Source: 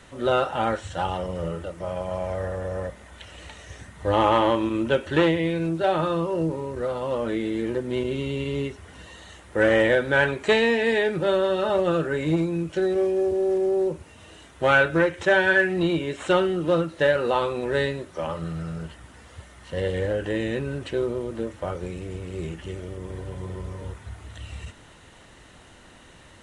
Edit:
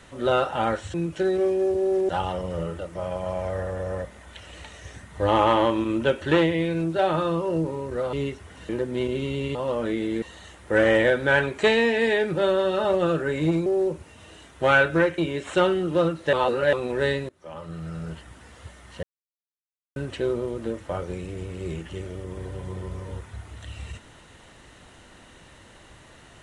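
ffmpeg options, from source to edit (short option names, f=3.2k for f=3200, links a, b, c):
-filter_complex "[0:a]asplit=14[a][b][c][d][e][f][g][h][i][j][k][l][m][n];[a]atrim=end=0.942[o];[b]atrim=start=12.508:end=13.662[p];[c]atrim=start=0.938:end=6.982[q];[d]atrim=start=8.508:end=9.072[r];[e]atrim=start=7.648:end=8.512[s];[f]atrim=start=6.978:end=7.652[t];[g]atrim=start=9.068:end=12.512[u];[h]atrim=start=13.658:end=15.182[v];[i]atrim=start=15.908:end=17.062[w];[j]atrim=start=17.058:end=17.462,asetpts=PTS-STARTPTS,areverse[x];[k]atrim=start=17.458:end=18.02,asetpts=PTS-STARTPTS,afade=t=out:st=0.558:d=0.004:c=hsin:silence=0.0668344[y];[l]atrim=start=18.02:end=19.76,asetpts=PTS-STARTPTS,afade=t=in:d=0.83:silence=0.0668344,afade=t=out:st=1.736:d=0.004:c=hsin[z];[m]atrim=start=19.76:end=20.69,asetpts=PTS-STARTPTS,volume=0[aa];[n]atrim=start=20.69,asetpts=PTS-STARTPTS,afade=t=in:d=0.004:c=hsin[ab];[o][p]acrossfade=d=0.004:c1=hsin:c2=hsin[ac];[ac][q]acrossfade=d=0.004:c1=hsin:c2=hsin[ad];[ad][r]acrossfade=d=0.004:c1=hsin:c2=hsin[ae];[ae][s]acrossfade=d=0.004:c1=hsin:c2=hsin[af];[af][t]acrossfade=d=0.004:c1=hsin:c2=hsin[ag];[ag][u]acrossfade=d=0.004:c1=hsin:c2=hsin[ah];[ah][v]acrossfade=d=0.004:c1=hsin:c2=hsin[ai];[ai][w]acrossfade=d=0.004:c1=hsin:c2=hsin[aj];[aj][x]acrossfade=d=0.004:c1=hsin:c2=hsin[ak];[y][z][aa][ab]concat=n=4:v=0:a=1[al];[ak][al]acrossfade=d=0.004:c1=hsin:c2=hsin"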